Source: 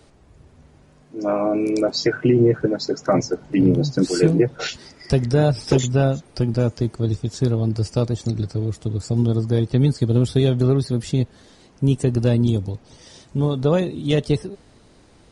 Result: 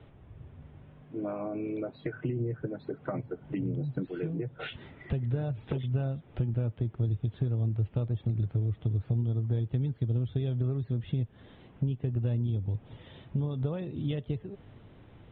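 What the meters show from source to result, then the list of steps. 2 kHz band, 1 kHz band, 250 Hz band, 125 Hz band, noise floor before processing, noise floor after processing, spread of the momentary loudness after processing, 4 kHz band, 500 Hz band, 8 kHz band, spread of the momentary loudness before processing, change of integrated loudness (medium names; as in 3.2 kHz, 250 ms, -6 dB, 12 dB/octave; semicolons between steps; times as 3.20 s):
-15.0 dB, -16.5 dB, -15.0 dB, -9.0 dB, -52 dBFS, -55 dBFS, 9 LU, under -20 dB, -17.5 dB, under -40 dB, 8 LU, -12.0 dB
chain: compression 10:1, threshold -28 dBFS, peak gain reduction 18 dB; steep low-pass 3.6 kHz 96 dB/octave; peaking EQ 110 Hz +9.5 dB 1.1 oct; trim -4.5 dB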